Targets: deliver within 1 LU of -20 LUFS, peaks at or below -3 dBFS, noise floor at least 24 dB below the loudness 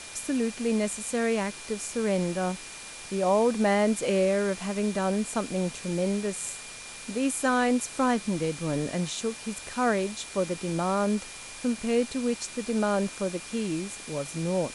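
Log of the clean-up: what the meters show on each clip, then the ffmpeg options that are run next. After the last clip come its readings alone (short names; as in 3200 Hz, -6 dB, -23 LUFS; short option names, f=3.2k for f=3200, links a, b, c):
steady tone 2400 Hz; tone level -47 dBFS; noise floor -42 dBFS; noise floor target -52 dBFS; loudness -28.0 LUFS; peak -13.0 dBFS; loudness target -20.0 LUFS
-> -af "bandreject=f=2.4k:w=30"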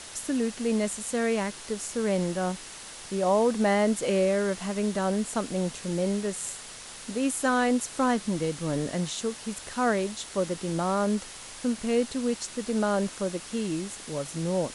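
steady tone none; noise floor -43 dBFS; noise floor target -52 dBFS
-> -af "afftdn=nr=9:nf=-43"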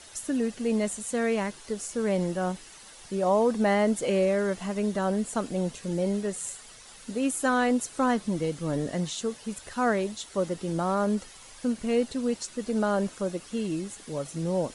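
noise floor -49 dBFS; noise floor target -53 dBFS
-> -af "afftdn=nr=6:nf=-49"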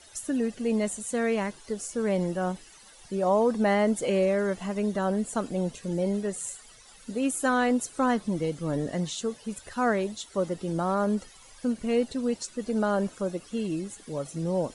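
noise floor -52 dBFS; noise floor target -53 dBFS
-> -af "afftdn=nr=6:nf=-52"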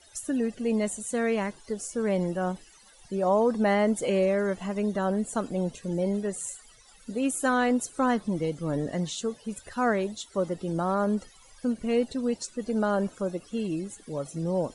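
noise floor -55 dBFS; loudness -28.5 LUFS; peak -13.5 dBFS; loudness target -20.0 LUFS
-> -af "volume=8.5dB"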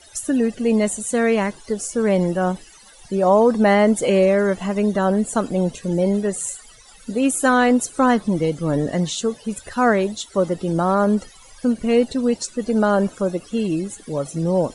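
loudness -20.0 LUFS; peak -5.0 dBFS; noise floor -47 dBFS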